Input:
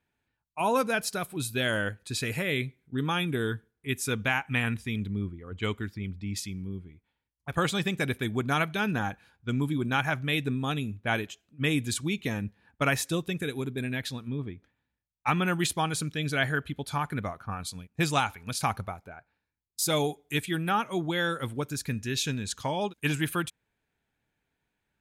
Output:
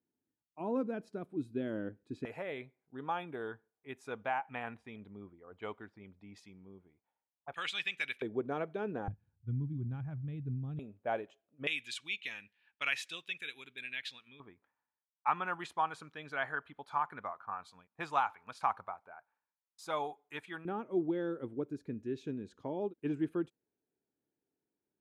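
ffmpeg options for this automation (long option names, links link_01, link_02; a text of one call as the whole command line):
ffmpeg -i in.wav -af "asetnsamples=nb_out_samples=441:pad=0,asendcmd='2.25 bandpass f 750;7.54 bandpass f 2600;8.22 bandpass f 460;9.08 bandpass f 100;10.79 bandpass f 600;11.67 bandpass f 2700;14.4 bandpass f 1000;20.65 bandpass f 350',bandpass=frequency=300:width_type=q:width=2.3:csg=0" out.wav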